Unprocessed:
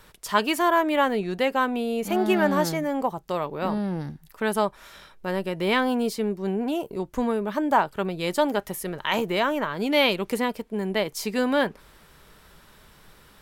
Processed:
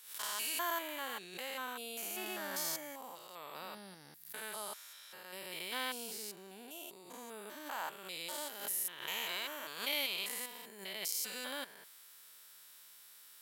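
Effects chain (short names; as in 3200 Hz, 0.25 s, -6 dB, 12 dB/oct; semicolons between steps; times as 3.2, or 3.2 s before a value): stepped spectrum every 0.2 s; differentiator; backwards sustainer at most 96 dB/s; gain +3 dB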